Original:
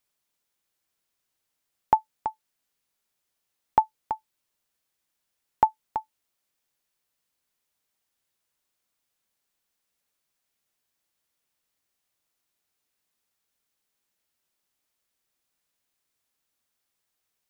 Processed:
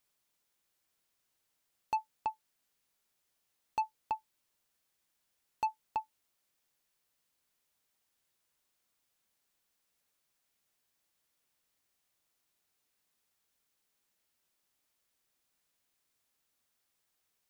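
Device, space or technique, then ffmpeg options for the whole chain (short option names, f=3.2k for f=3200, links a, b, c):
saturation between pre-emphasis and de-emphasis: -af "highshelf=f=2k:g=10.5,asoftclip=type=tanh:threshold=-25dB,highshelf=f=2k:g=-10.5"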